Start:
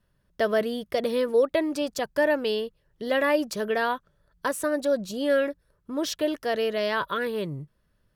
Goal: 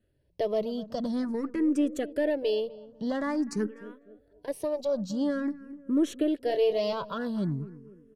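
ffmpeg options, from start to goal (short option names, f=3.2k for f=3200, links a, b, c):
-filter_complex "[0:a]lowpass=8.3k,bass=f=250:g=3,treble=f=4k:g=6,bandreject=f=3.6k:w=20,aeval=exprs='0.282*(cos(1*acos(clip(val(0)/0.282,-1,1)))-cos(1*PI/2))+0.0141*(cos(6*acos(clip(val(0)/0.282,-1,1)))-cos(6*PI/2))':c=same,alimiter=limit=-18dB:level=0:latency=1:release=348,equalizer=f=270:w=0.56:g=12,asettb=1/sr,asplit=3[a][b][c];[a]atrim=end=3.664[d];[b]atrim=start=3.66:end=4.48,asetpts=PTS-STARTPTS,afade=t=in:d=0.004:c=qsin,afade=t=out:st=0.816:d=0.004:c=qsin,acompressor=threshold=-37dB:ratio=8[e];[c]atrim=start=4.476[f];[d][e]acrossfade=d=0.004:c1=hsin:c2=qsin[g];[g][f]acrossfade=d=0.004:c1=qsin:c2=hsin,asettb=1/sr,asplit=3[h][i][j];[h]atrim=end=6.474[k];[i]atrim=start=6.47:end=6.93,asetpts=PTS-STARTPTS,afade=t=in:d=0.004:c=qsin,afade=t=out:st=0.456:d=0.004:c=qsin,asplit=2[l][m];[m]adelay=25,volume=-5.5dB[n];[l][n]amix=inputs=2:normalize=0,atrim=end_sample=20286[o];[j]atrim=start=6.926[p];[k][o]acrossfade=d=0.004:c1=hsin:c2=qsin[q];[q][p]acrossfade=d=0.004:c1=qsin:c2=hsin,asplit=2[r][s];[s]adelay=250,lowpass=f=1.2k:p=1,volume=-16.5dB,asplit=2[t][u];[u]adelay=250,lowpass=f=1.2k:p=1,volume=0.43,asplit=2[v][w];[w]adelay=250,lowpass=f=1.2k:p=1,volume=0.43,asplit=2[x][y];[y]adelay=250,lowpass=f=1.2k:p=1,volume=0.43[z];[r][t][v][x][z]amix=inputs=5:normalize=0,asplit=2[aa][ab];[ab]afreqshift=0.48[ac];[aa][ac]amix=inputs=2:normalize=1,volume=-5.5dB"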